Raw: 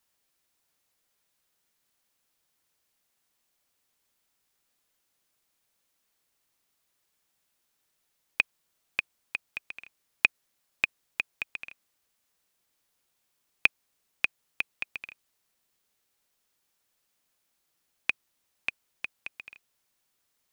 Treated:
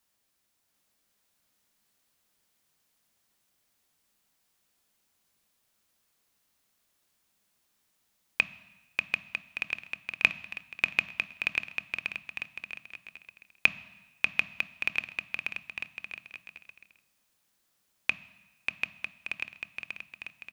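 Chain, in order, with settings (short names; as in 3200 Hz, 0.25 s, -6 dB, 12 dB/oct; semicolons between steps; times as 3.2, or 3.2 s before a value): bouncing-ball echo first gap 0.74 s, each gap 0.65×, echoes 5; on a send at -14.5 dB: reverb RT60 1.1 s, pre-delay 3 ms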